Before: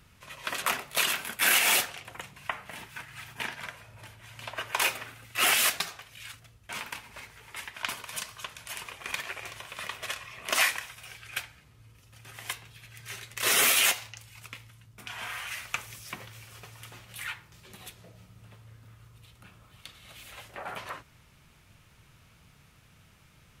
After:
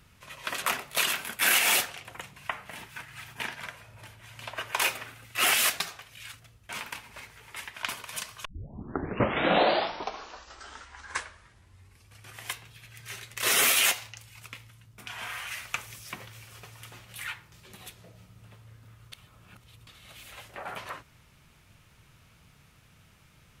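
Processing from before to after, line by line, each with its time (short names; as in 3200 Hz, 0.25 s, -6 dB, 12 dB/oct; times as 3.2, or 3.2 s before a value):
8.45 tape start 4.01 s
19.12–19.87 reverse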